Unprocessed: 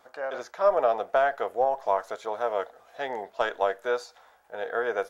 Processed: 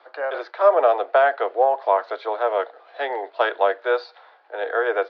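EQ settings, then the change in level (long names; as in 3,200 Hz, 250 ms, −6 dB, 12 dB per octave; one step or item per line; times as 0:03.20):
Butterworth high-pass 290 Hz 96 dB per octave
elliptic low-pass filter 4,400 Hz, stop band 50 dB
+7.0 dB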